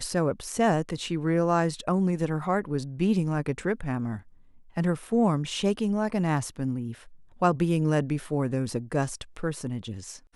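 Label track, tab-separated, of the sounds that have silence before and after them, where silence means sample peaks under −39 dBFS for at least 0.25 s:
4.760000	7.030000	sound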